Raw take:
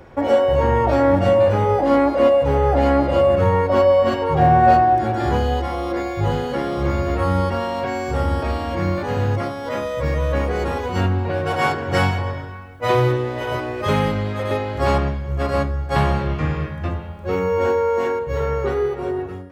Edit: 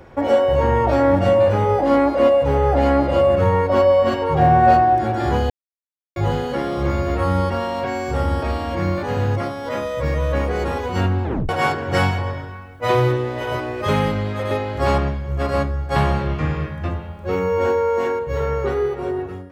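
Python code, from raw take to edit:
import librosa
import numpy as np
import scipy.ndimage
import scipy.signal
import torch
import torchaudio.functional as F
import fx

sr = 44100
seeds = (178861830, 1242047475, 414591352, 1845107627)

y = fx.edit(x, sr, fx.silence(start_s=5.5, length_s=0.66),
    fx.tape_stop(start_s=11.24, length_s=0.25), tone=tone)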